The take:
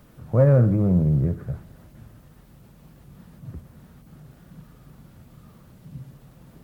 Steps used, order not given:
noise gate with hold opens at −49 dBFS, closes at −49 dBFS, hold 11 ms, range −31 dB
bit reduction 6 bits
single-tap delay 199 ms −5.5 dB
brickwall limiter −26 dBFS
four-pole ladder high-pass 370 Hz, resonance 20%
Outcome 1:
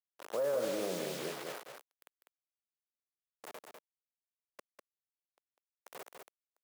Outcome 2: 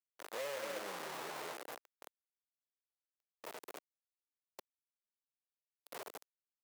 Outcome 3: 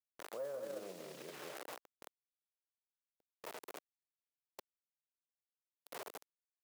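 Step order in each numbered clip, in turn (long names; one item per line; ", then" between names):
bit reduction, then noise gate with hold, then four-pole ladder high-pass, then brickwall limiter, then single-tap delay
single-tap delay, then brickwall limiter, then bit reduction, then noise gate with hold, then four-pole ladder high-pass
single-tap delay, then bit reduction, then brickwall limiter, then four-pole ladder high-pass, then noise gate with hold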